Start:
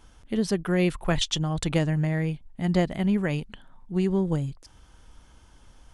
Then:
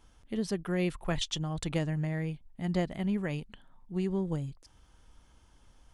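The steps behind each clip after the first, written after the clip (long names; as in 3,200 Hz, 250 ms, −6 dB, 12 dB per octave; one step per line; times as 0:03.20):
notch filter 1,500 Hz, Q 29
level −7 dB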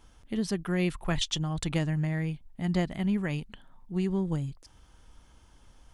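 dynamic equaliser 510 Hz, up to −5 dB, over −46 dBFS, Q 1.5
level +3.5 dB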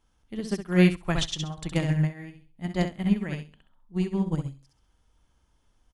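on a send: repeating echo 66 ms, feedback 32%, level −4 dB
on the sum: expander for the loud parts 2.5 to 1, over −35 dBFS
level +7.5 dB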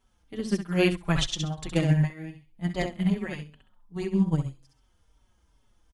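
barber-pole flanger 4.8 ms −2.5 Hz
level +4 dB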